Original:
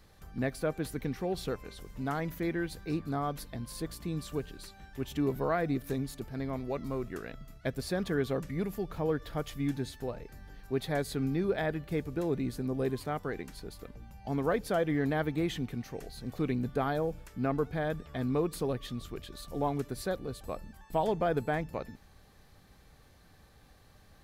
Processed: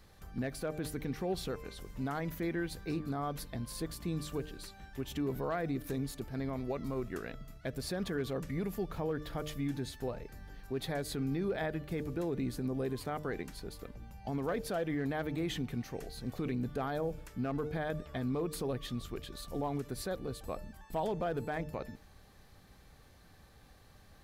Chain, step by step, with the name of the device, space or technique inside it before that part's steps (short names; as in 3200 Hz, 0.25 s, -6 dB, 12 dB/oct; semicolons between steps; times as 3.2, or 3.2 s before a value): de-hum 151.5 Hz, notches 4; clipper into limiter (hard clip -21 dBFS, distortion -28 dB; limiter -26.5 dBFS, peak gain reduction 5.5 dB)